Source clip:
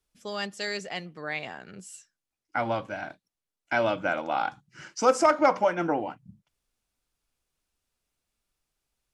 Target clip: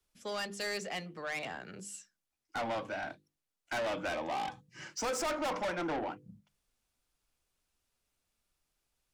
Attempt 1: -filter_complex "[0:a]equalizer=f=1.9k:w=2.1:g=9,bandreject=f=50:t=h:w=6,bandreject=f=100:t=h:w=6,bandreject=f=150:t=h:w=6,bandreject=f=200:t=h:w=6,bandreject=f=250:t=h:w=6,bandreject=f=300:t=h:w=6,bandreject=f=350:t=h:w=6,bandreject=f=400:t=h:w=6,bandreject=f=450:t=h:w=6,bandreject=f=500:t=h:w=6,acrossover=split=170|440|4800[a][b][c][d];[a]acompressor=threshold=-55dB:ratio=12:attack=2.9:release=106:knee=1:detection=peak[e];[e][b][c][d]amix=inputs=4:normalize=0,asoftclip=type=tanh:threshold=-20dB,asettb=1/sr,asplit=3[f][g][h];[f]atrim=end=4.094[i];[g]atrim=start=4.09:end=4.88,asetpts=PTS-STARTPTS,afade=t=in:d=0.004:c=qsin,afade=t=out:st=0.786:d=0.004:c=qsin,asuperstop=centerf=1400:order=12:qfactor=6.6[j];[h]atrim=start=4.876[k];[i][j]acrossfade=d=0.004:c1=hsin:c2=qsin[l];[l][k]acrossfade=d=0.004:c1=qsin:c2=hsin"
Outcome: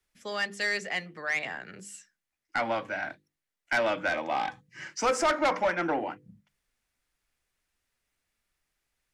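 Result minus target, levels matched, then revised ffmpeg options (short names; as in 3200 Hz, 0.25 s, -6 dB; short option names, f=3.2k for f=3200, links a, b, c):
soft clip: distortion -6 dB; 2000 Hz band +2.5 dB
-filter_complex "[0:a]bandreject=f=50:t=h:w=6,bandreject=f=100:t=h:w=6,bandreject=f=150:t=h:w=6,bandreject=f=200:t=h:w=6,bandreject=f=250:t=h:w=6,bandreject=f=300:t=h:w=6,bandreject=f=350:t=h:w=6,bandreject=f=400:t=h:w=6,bandreject=f=450:t=h:w=6,bandreject=f=500:t=h:w=6,acrossover=split=170|440|4800[a][b][c][d];[a]acompressor=threshold=-55dB:ratio=12:attack=2.9:release=106:knee=1:detection=peak[e];[e][b][c][d]amix=inputs=4:normalize=0,asoftclip=type=tanh:threshold=-31.5dB,asettb=1/sr,asplit=3[f][g][h];[f]atrim=end=4.094[i];[g]atrim=start=4.09:end=4.88,asetpts=PTS-STARTPTS,afade=t=in:d=0.004:c=qsin,afade=t=out:st=0.786:d=0.004:c=qsin,asuperstop=centerf=1400:order=12:qfactor=6.6[j];[h]atrim=start=4.876[k];[i][j]acrossfade=d=0.004:c1=hsin:c2=qsin[l];[l][k]acrossfade=d=0.004:c1=qsin:c2=hsin"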